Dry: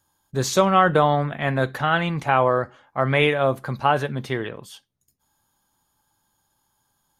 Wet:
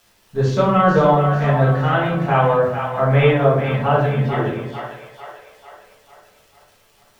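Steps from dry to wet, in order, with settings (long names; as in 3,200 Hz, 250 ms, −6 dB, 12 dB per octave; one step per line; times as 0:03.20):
low-pass filter 4,800 Hz 12 dB per octave
high-shelf EQ 2,800 Hz −10.5 dB
surface crackle 480 per second −44 dBFS
echo with a time of its own for lows and highs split 560 Hz, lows 97 ms, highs 446 ms, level −7.5 dB
rectangular room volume 84 cubic metres, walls mixed, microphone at 1.6 metres
level −4 dB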